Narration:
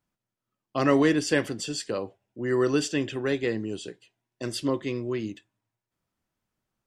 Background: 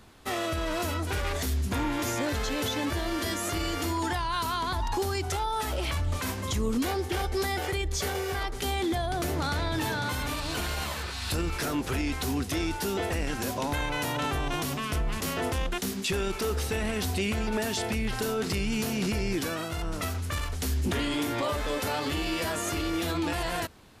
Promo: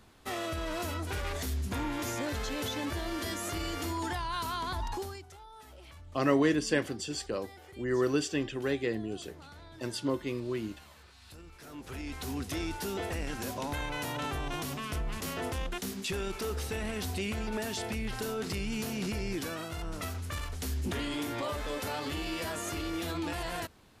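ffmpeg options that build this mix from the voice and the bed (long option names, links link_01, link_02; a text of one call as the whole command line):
ffmpeg -i stem1.wav -i stem2.wav -filter_complex "[0:a]adelay=5400,volume=-4.5dB[link_01];[1:a]volume=11dB,afade=type=out:start_time=4.84:duration=0.42:silence=0.149624,afade=type=in:start_time=11.6:duration=0.89:silence=0.158489[link_02];[link_01][link_02]amix=inputs=2:normalize=0" out.wav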